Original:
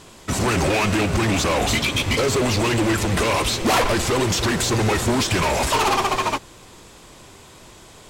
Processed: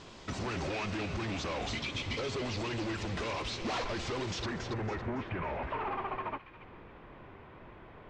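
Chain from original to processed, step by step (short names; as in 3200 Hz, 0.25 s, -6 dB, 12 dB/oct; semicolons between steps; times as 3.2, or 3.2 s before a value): LPF 5800 Hz 24 dB/oct, from 4.46 s 2200 Hz; compressor 2:1, threshold -38 dBFS, peak gain reduction 12 dB; thin delay 0.279 s, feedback 33%, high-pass 2200 Hz, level -7 dB; gain -5 dB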